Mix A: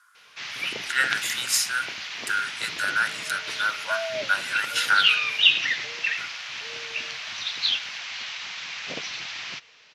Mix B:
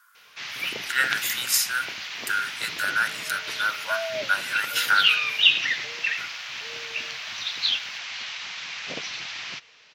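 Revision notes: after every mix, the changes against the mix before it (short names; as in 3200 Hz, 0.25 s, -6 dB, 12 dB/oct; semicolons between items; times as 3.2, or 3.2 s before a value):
speech: remove LPF 11000 Hz 24 dB/oct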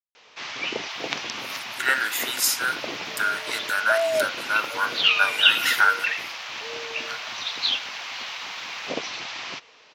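speech: entry +0.90 s; master: add band shelf 520 Hz +8 dB 2.6 oct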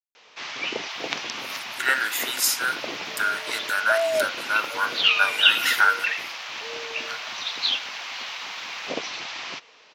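master: add HPF 130 Hz 6 dB/oct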